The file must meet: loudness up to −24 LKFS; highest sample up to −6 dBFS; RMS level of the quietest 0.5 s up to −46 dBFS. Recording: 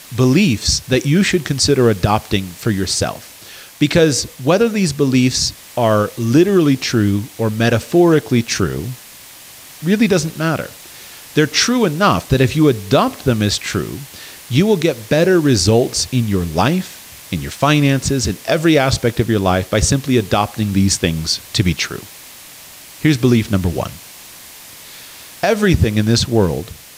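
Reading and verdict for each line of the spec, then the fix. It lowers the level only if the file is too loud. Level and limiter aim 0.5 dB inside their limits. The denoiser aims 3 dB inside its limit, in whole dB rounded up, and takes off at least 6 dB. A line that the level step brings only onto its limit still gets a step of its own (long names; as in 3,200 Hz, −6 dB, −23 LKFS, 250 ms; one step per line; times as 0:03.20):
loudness −15.5 LKFS: out of spec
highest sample −2.0 dBFS: out of spec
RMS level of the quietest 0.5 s −39 dBFS: out of spec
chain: level −9 dB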